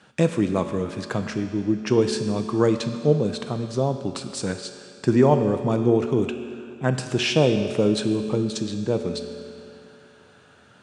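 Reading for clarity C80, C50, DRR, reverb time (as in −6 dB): 8.5 dB, 8.0 dB, 6.5 dB, 2.5 s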